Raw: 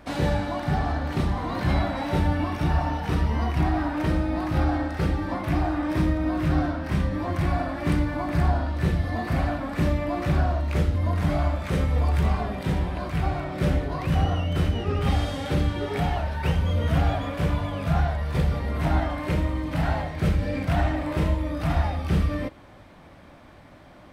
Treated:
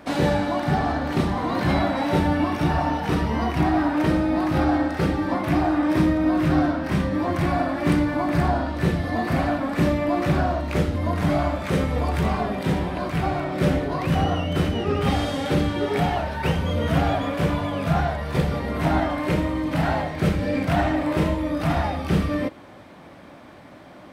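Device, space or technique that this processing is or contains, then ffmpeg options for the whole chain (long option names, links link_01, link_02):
filter by subtraction: -filter_complex "[0:a]asplit=2[link_01][link_02];[link_02]lowpass=260,volume=-1[link_03];[link_01][link_03]amix=inputs=2:normalize=0,volume=4dB"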